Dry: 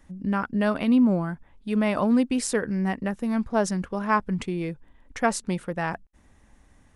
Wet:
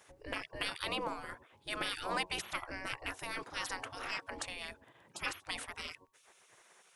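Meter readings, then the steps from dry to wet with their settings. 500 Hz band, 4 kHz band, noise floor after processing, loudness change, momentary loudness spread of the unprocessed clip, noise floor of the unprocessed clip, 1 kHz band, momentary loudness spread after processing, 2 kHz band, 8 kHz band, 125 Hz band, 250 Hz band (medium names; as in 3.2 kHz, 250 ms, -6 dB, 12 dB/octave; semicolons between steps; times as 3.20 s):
-17.5 dB, +1.0 dB, -67 dBFS, -14.0 dB, 10 LU, -58 dBFS, -12.0 dB, 10 LU, -6.5 dB, -11.0 dB, -23.0 dB, -27.0 dB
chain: de-hum 92.9 Hz, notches 12; spectral gate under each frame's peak -25 dB weak; trim +5.5 dB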